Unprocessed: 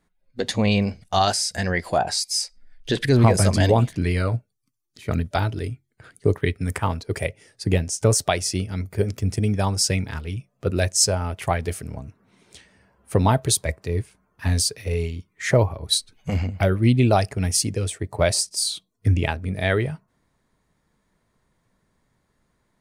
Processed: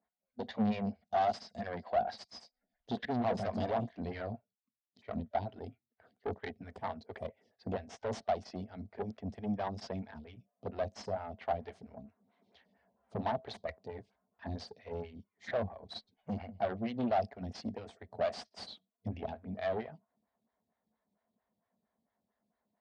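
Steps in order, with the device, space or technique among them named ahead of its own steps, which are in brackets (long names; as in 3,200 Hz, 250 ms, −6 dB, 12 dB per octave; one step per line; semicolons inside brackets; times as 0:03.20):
vibe pedal into a guitar amplifier (phaser with staggered stages 4.4 Hz; tube saturation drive 23 dB, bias 0.8; loudspeaker in its box 86–4,400 Hz, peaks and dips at 140 Hz −9 dB, 220 Hz +10 dB, 330 Hz −7 dB, 700 Hz +10 dB, 1,300 Hz −3 dB, 2,500 Hz −5 dB)
level −7.5 dB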